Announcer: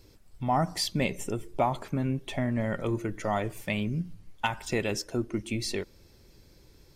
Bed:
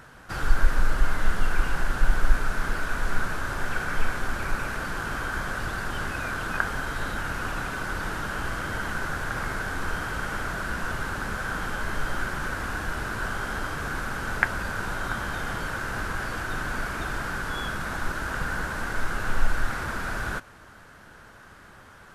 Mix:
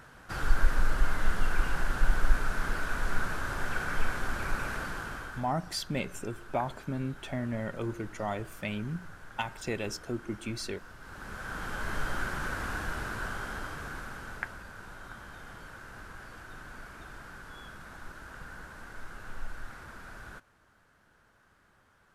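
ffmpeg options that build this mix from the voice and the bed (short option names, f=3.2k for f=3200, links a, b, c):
-filter_complex "[0:a]adelay=4950,volume=-5dB[a];[1:a]volume=12dB,afade=t=out:st=4.75:d=0.77:silence=0.158489,afade=t=in:st=10.99:d=0.97:silence=0.158489,afade=t=out:st=12.75:d=1.9:silence=0.251189[b];[a][b]amix=inputs=2:normalize=0"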